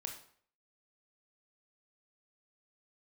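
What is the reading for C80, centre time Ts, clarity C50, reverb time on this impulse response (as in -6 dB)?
11.5 dB, 21 ms, 7.0 dB, 0.55 s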